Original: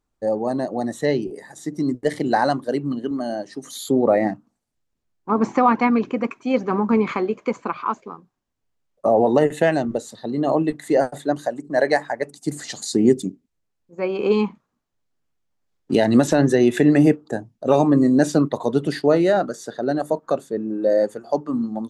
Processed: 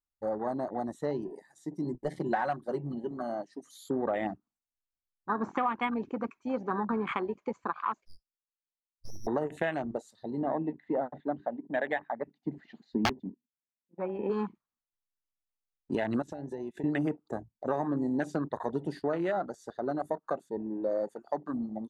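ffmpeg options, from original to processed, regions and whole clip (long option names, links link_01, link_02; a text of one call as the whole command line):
ffmpeg -i in.wav -filter_complex "[0:a]asettb=1/sr,asplit=3[link_01][link_02][link_03];[link_01]atrim=end=1.844[link_04];[link_02]atrim=start=1.84:end=3.22,asetpts=PTS-STARTPTS,afade=type=in:duration=0.004:curve=qsin,afade=type=out:start_time=1.376:duration=0.004:curve=qsin,lowshelf=frequency=140:gain=3.5,aecho=1:1:5.4:0.58,atrim=end_sample=60858[link_05];[link_03]atrim=start=3.216[link_06];[link_04][link_05]acrossfade=duration=0.004:curve1=hsin:curve2=qsin[link_07];[link_07][link_06]acrossfade=duration=0.004:curve1=qsin:curve2=hsin,asettb=1/sr,asplit=3[link_08][link_09][link_10];[link_08]atrim=end=8.054[link_11];[link_09]atrim=start=8.05:end=9.27,asetpts=PTS-STARTPTS,afade=type=in:duration=0.004:curve=qsin,afade=type=out:start_time=1.216:duration=0.004:curve=qsin,highpass=frequency=1000:width=0.5412,highpass=frequency=1000:width=1.3066,lowpass=frequency=3100:width_type=q:width=0.5098,lowpass=frequency=3100:width_type=q:width=0.6013,lowpass=frequency=3100:width_type=q:width=0.9,lowpass=frequency=3100:width_type=q:width=2.563,afreqshift=-3600,aeval=exprs='abs(val(0))':channel_layout=same[link_12];[link_10]atrim=start=9.266[link_13];[link_11][link_12]acrossfade=duration=0.004:curve1=hsin:curve2=qsin[link_14];[link_14][link_13]acrossfade=duration=0.004:curve1=qsin:curve2=hsin,asettb=1/sr,asplit=3[link_15][link_16][link_17];[link_15]atrim=end=10.424[link_18];[link_16]atrim=start=10.42:end=14.3,asetpts=PTS-STARTPTS,afade=type=in:duration=0.004:curve=qsin,afade=type=out:start_time=3.876:duration=0.004:curve=qsin,highpass=110,equalizer=frequency=230:width_type=q:width=4:gain=9,equalizer=frequency=370:width_type=q:width=4:gain=-3,equalizer=frequency=1200:width_type=q:width=4:gain=-6,lowpass=frequency=2700:width=0.5412,lowpass=frequency=2700:width=1.3066,aeval=exprs='(mod(1.58*val(0)+1,2)-1)/1.58':channel_layout=same[link_19];[link_17]atrim=start=14.296[link_20];[link_18][link_19]acrossfade=duration=0.004:curve1=hsin:curve2=qsin[link_21];[link_21][link_20]acrossfade=duration=0.004:curve1=qsin:curve2=hsin,asettb=1/sr,asplit=3[link_22][link_23][link_24];[link_22]atrim=end=16.224[link_25];[link_23]atrim=start=16.22:end=16.84,asetpts=PTS-STARTPTS,afade=type=in:duration=0.004:curve=qsin,afade=type=out:start_time=0.616:duration=0.004:curve=qsin,acompressor=threshold=-21dB:ratio=12:attack=3.2:release=140:knee=1:detection=peak,agate=range=-33dB:threshold=-23dB:ratio=3:release=100:detection=peak[link_26];[link_24]atrim=start=16.836[link_27];[link_25][link_26]acrossfade=duration=0.004:curve1=hsin:curve2=qsin[link_28];[link_28][link_27]acrossfade=duration=0.004:curve1=qsin:curve2=hsin,afwtdn=0.0398,equalizer=frequency=125:width_type=o:width=1:gain=-7,equalizer=frequency=250:width_type=o:width=1:gain=-6,equalizer=frequency=500:width_type=o:width=1:gain=-7,acompressor=threshold=-25dB:ratio=4,volume=-2dB" out.wav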